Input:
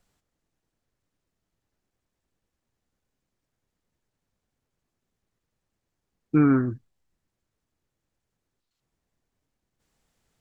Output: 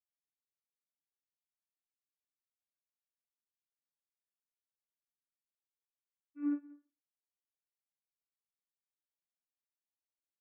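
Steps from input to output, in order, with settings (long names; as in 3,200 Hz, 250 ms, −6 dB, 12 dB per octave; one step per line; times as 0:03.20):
low-shelf EQ 440 Hz −7.5 dB
notch comb filter 360 Hz
channel vocoder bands 32, saw 290 Hz
single-tap delay 184 ms −8.5 dB
expander for the loud parts 2.5 to 1, over −34 dBFS
level −8 dB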